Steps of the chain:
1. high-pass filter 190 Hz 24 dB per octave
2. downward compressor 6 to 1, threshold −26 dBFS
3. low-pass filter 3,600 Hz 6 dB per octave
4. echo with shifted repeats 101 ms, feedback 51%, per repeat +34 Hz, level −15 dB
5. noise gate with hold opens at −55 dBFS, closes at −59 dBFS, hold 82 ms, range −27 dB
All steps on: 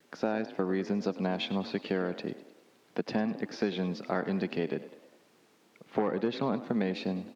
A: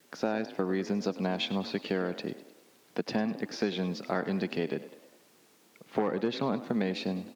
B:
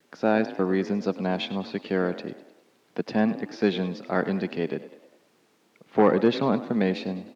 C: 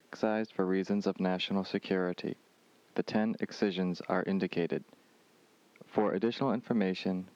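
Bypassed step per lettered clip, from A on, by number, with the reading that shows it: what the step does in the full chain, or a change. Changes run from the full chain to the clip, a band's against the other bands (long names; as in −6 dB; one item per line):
3, 4 kHz band +3.0 dB
2, average gain reduction 4.0 dB
4, change in momentary loudness spread −1 LU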